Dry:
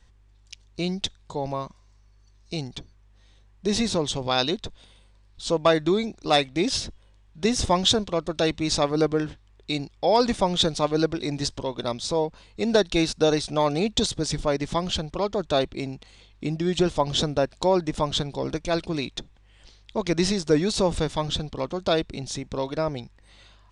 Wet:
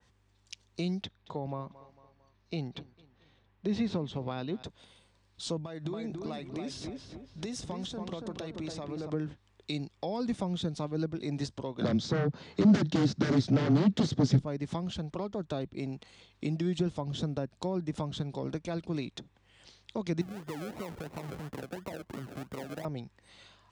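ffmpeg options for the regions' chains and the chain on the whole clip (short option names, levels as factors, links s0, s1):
-filter_complex "[0:a]asettb=1/sr,asplit=3[s0][s1][s2];[s0]atrim=end=1.034[s3];[s1]atrim=start=1.03:end=4.63,asetpts=PTS-STARTPTS,afade=t=in:d=0.004:c=qsin,afade=t=out:st=3.596:d=0.004:c=qsin,lowpass=3000,aecho=1:1:225|450|675:0.0708|0.0333|0.0156,atrim=end_sample=158760[s4];[s2]atrim=start=4.626[s5];[s3][s4]acrossfade=d=0.004:c1=hsin:c2=qsin[s6];[s6][s5]acrossfade=d=0.004:c1=qsin:c2=hsin,asettb=1/sr,asplit=3[s7][s8][s9];[s7]atrim=end=5.574[s10];[s8]atrim=start=5.57:end=9.1,asetpts=PTS-STARTPTS,afade=t=in:d=0.004:c=qsin,afade=t=out:st=3.526:d=0.004:c=qsin,lowshelf=f=190:g=6,acompressor=threshold=0.0316:ratio=12:attack=3.2:release=140:knee=1:detection=peak,asplit=2[s11][s12];[s12]adelay=281,lowpass=f=2100:p=1,volume=0.596,asplit=2[s13][s14];[s14]adelay=281,lowpass=f=2100:p=1,volume=0.38,asplit=2[s15][s16];[s16]adelay=281,lowpass=f=2100:p=1,volume=0.38,asplit=2[s17][s18];[s18]adelay=281,lowpass=f=2100:p=1,volume=0.38,asplit=2[s19][s20];[s20]adelay=281,lowpass=f=2100:p=1,volume=0.38[s21];[s11][s13][s15][s17][s19][s21]amix=inputs=6:normalize=0,atrim=end_sample=155673[s22];[s9]atrim=start=9.096[s23];[s10][s22]acrossfade=d=0.004:c1=hsin:c2=qsin[s24];[s24][s23]acrossfade=d=0.004:c1=qsin:c2=hsin,asettb=1/sr,asplit=3[s25][s26][s27];[s25]atrim=end=11.814[s28];[s26]atrim=start=11.81:end=14.39,asetpts=PTS-STARTPTS,afade=t=in:d=0.004:c=qsin,afade=t=out:st=2.576:d=0.004:c=qsin,afreqshift=-19,aeval=exprs='0.447*sin(PI/2*6.31*val(0)/0.447)':c=same,highpass=150,equalizer=f=190:t=q:w=4:g=-4,equalizer=f=1000:t=q:w=4:g=-4,equalizer=f=2600:t=q:w=4:g=-5,lowpass=f=6300:w=0.5412,lowpass=f=6300:w=1.3066[s29];[s27]atrim=start=14.386[s30];[s28][s29]acrossfade=d=0.004:c1=hsin:c2=qsin[s31];[s31][s30]acrossfade=d=0.004:c1=qsin:c2=hsin,asettb=1/sr,asplit=3[s32][s33][s34];[s32]atrim=end=20.214[s35];[s33]atrim=start=20.21:end=22.85,asetpts=PTS-STARTPTS,afade=t=in:d=0.004:c=qsin,afade=t=out:st=2.636:d=0.004:c=qsin,acompressor=threshold=0.0282:ratio=10:attack=3.2:release=140:knee=1:detection=peak,lowpass=3500,acrusher=samples=37:mix=1:aa=0.000001:lfo=1:lforange=22.2:lforate=2.9[s36];[s34]atrim=start=22.846[s37];[s35][s36]acrossfade=d=0.004:c1=hsin:c2=qsin[s38];[s38][s37]acrossfade=d=0.004:c1=qsin:c2=hsin,highpass=110,acrossover=split=250[s39][s40];[s40]acompressor=threshold=0.02:ratio=6[s41];[s39][s41]amix=inputs=2:normalize=0,adynamicequalizer=threshold=0.002:dfrequency=2500:dqfactor=0.7:tfrequency=2500:tqfactor=0.7:attack=5:release=100:ratio=0.375:range=2.5:mode=cutabove:tftype=highshelf,volume=0.794"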